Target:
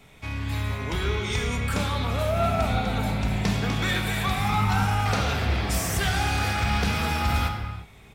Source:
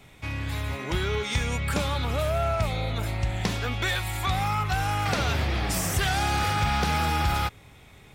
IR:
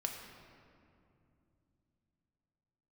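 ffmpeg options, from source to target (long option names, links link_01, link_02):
-filter_complex "[0:a]asplit=3[link_01][link_02][link_03];[link_01]afade=type=out:start_time=2.35:duration=0.02[link_04];[link_02]asplit=5[link_05][link_06][link_07][link_08][link_09];[link_06]adelay=248,afreqshift=94,volume=-6dB[link_10];[link_07]adelay=496,afreqshift=188,volume=-15.6dB[link_11];[link_08]adelay=744,afreqshift=282,volume=-25.3dB[link_12];[link_09]adelay=992,afreqshift=376,volume=-34.9dB[link_13];[link_05][link_10][link_11][link_12][link_13]amix=inputs=5:normalize=0,afade=type=in:start_time=2.35:duration=0.02,afade=type=out:start_time=4.84:duration=0.02[link_14];[link_03]afade=type=in:start_time=4.84:duration=0.02[link_15];[link_04][link_14][link_15]amix=inputs=3:normalize=0[link_16];[1:a]atrim=start_sample=2205,afade=type=out:start_time=0.42:duration=0.01,atrim=end_sample=18963[link_17];[link_16][link_17]afir=irnorm=-1:irlink=0"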